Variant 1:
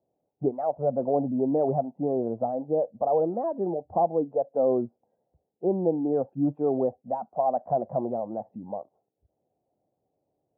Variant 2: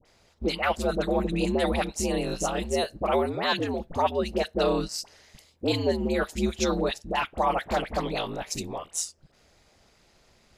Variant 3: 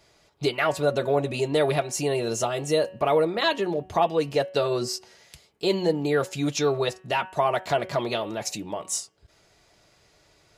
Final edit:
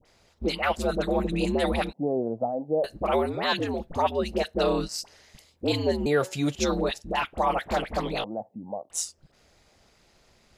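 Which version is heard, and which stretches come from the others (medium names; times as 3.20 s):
2
1.93–2.84 s: from 1
6.06–6.55 s: from 3
8.24–8.90 s: from 1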